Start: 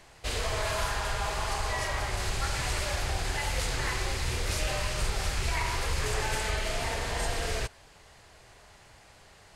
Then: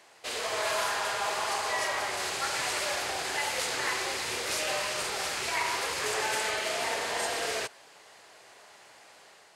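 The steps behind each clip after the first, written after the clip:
high-pass filter 340 Hz 12 dB per octave
automatic gain control gain up to 3.5 dB
level −1 dB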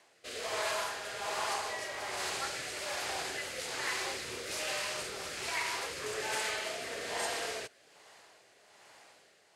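rotating-speaker cabinet horn 1.2 Hz
level −3 dB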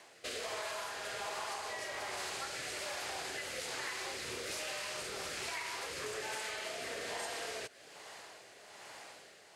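downward compressor 6 to 1, threshold −45 dBFS, peak gain reduction 14 dB
level +6.5 dB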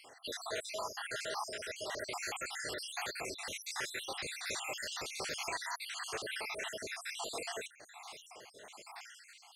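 time-frequency cells dropped at random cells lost 66%
level +5 dB

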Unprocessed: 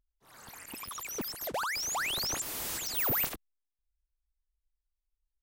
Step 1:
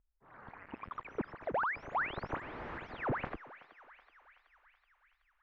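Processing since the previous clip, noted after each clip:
low-pass filter 1,900 Hz 24 dB per octave
feedback echo with a high-pass in the loop 376 ms, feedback 73%, high-pass 890 Hz, level −14 dB
level +1 dB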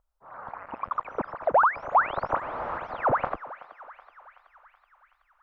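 flat-topped bell 850 Hz +12 dB
level +2.5 dB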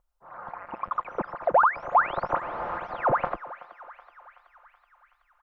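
comb filter 5.7 ms, depth 33%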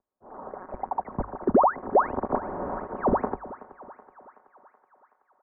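single-sideband voice off tune −300 Hz 320–2,000 Hz
low-shelf EQ 96 Hz +7 dB
mains-hum notches 50/100 Hz

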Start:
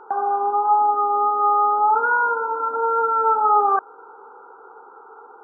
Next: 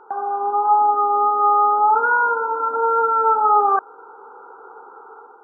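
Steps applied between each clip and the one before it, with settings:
automatic gain control gain up to 6 dB
level −3 dB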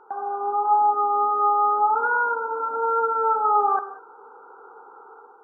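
reverb whose tail is shaped and stops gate 220 ms flat, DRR 10.5 dB
level −5 dB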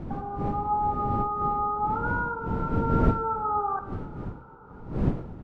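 wind on the microphone 220 Hz −23 dBFS
echo with shifted repeats 483 ms, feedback 53%, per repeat +32 Hz, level −23.5 dB
level −7.5 dB

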